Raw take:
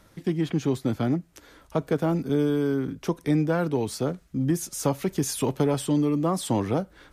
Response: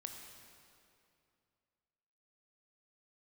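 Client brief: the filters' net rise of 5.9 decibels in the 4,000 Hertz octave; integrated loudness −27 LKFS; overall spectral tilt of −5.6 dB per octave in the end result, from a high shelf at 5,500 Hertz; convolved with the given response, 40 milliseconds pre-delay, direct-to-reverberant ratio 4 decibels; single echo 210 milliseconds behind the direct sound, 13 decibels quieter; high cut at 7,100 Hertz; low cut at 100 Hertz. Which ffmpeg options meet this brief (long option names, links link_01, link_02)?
-filter_complex "[0:a]highpass=100,lowpass=7100,equalizer=frequency=4000:width_type=o:gain=6,highshelf=frequency=5500:gain=5,aecho=1:1:210:0.224,asplit=2[link_01][link_02];[1:a]atrim=start_sample=2205,adelay=40[link_03];[link_02][link_03]afir=irnorm=-1:irlink=0,volume=-1dB[link_04];[link_01][link_04]amix=inputs=2:normalize=0,volume=-2dB"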